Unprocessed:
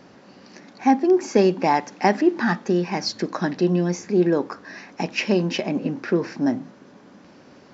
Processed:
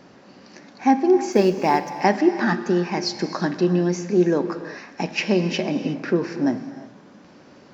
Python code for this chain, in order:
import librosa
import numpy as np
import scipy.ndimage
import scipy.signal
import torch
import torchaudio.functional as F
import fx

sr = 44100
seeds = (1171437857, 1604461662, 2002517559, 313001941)

y = fx.law_mismatch(x, sr, coded='A', at=(1.32, 2.0))
y = fx.rev_gated(y, sr, seeds[0], gate_ms=390, shape='flat', drr_db=10.0)